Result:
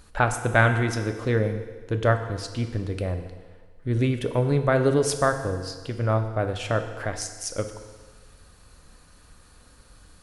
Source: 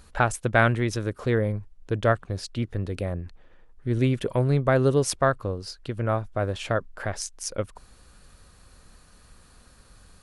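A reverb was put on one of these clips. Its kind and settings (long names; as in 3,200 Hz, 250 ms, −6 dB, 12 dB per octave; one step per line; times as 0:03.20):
feedback delay network reverb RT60 1.5 s, low-frequency decay 0.85×, high-frequency decay 0.95×, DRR 6.5 dB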